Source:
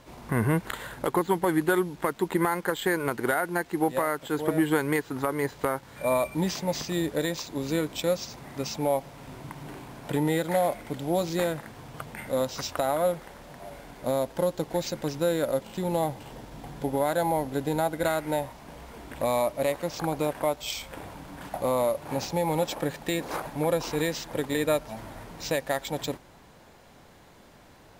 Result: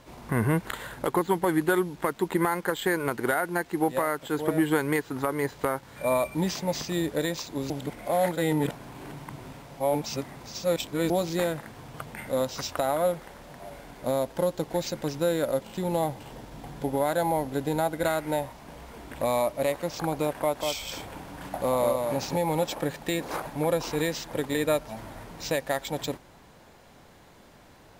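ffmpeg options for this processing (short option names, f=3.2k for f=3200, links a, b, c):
-filter_complex "[0:a]asettb=1/sr,asplit=3[a][b][c];[a]atrim=end=20.364[d];[b]atrim=start=20.36:end=22.36,asetpts=PTS-STARTPTS,afade=t=in:d=0.004:c=qsin,afade=t=out:st=1.996:d=0.004:c=qsin,aecho=1:1:193:0.596,atrim=end_sample=88200[e];[c]atrim=start=22.356[f];[d][e]acrossfade=d=0.004:c1=hsin:c2=qsin[g];[g][f]acrossfade=d=0.004:c1=qsin:c2=hsin,asplit=3[h][i][j];[h]atrim=end=7.702[k];[i]atrim=start=7.698:end=11.102,asetpts=PTS-STARTPTS,areverse[l];[j]atrim=start=11.098[m];[k][l]acrossfade=d=0.004:c1=hsin:c2=hsin[n];[n][m]acrossfade=d=0.004:c1=hsin:c2=hsin"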